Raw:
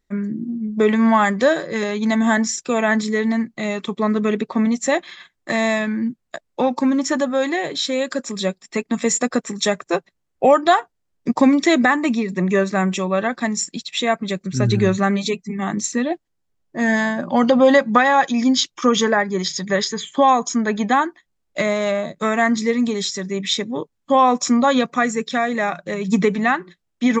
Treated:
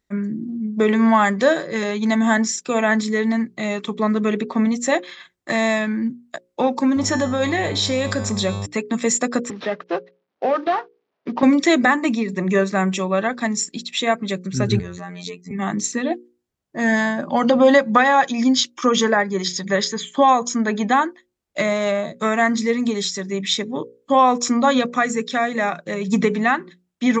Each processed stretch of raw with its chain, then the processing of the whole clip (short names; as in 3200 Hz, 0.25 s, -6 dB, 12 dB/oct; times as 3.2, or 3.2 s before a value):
6.95–8.65 resonator 220 Hz, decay 0.57 s, mix 70% + buzz 100 Hz, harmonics 12, -42 dBFS -7 dB/oct + fast leveller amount 50%
9.5–11.43 CVSD 32 kbps + compressor 2:1, threshold -17 dBFS + BPF 230–3000 Hz
14.79–15.51 compressor 4:1, threshold -26 dBFS + robotiser 88.6 Hz
whole clip: HPF 42 Hz; notches 60/120/180/240/300/360/420/480/540 Hz